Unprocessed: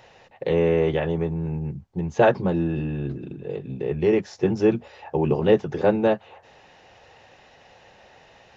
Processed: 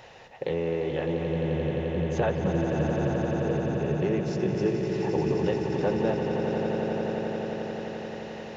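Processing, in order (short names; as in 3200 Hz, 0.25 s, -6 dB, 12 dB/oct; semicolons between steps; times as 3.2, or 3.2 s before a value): compressor 2.5:1, threshold -33 dBFS, peak gain reduction 14 dB; swelling echo 87 ms, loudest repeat 8, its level -8.5 dB; gain +2.5 dB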